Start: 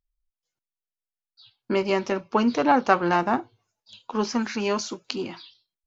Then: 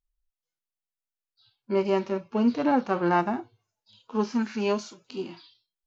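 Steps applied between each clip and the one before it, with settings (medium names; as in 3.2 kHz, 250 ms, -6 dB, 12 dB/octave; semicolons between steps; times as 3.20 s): harmonic-percussive split percussive -17 dB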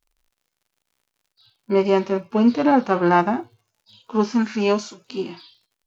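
crackle 84 per s -58 dBFS; trim +6.5 dB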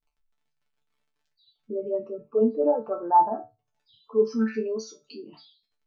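resonances exaggerated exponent 3; chord resonator D3 fifth, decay 0.22 s; trim +5 dB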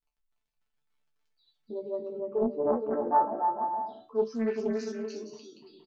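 bouncing-ball echo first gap 290 ms, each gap 0.6×, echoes 5; loudspeaker Doppler distortion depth 0.39 ms; trim -6 dB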